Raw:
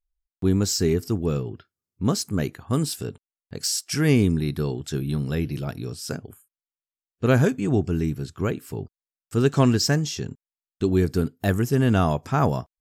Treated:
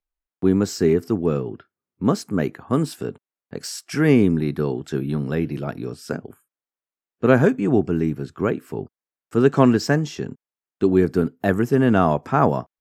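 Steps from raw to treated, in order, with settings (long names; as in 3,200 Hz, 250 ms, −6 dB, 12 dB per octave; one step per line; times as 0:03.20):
three-way crossover with the lows and the highs turned down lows −14 dB, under 160 Hz, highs −13 dB, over 2,300 Hz
level +5.5 dB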